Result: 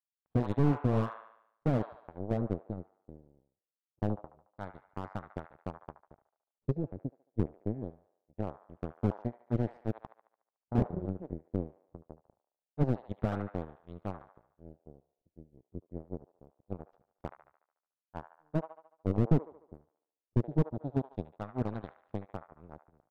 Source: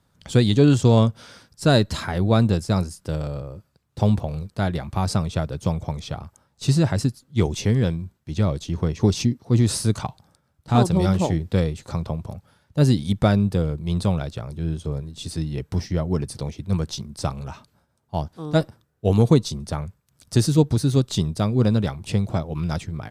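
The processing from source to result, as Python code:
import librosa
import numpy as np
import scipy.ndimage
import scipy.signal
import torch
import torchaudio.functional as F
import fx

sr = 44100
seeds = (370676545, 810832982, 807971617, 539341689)

p1 = fx.power_curve(x, sr, exponent=3.0)
p2 = fx.filter_lfo_lowpass(p1, sr, shape='sine', hz=0.24, low_hz=380.0, high_hz=1500.0, q=1.1)
p3 = p2 + fx.echo_wet_bandpass(p2, sr, ms=73, feedback_pct=50, hz=1400.0, wet_db=-11.0, dry=0)
p4 = fx.slew_limit(p3, sr, full_power_hz=30.0)
y = F.gain(torch.from_numpy(p4), -2.0).numpy()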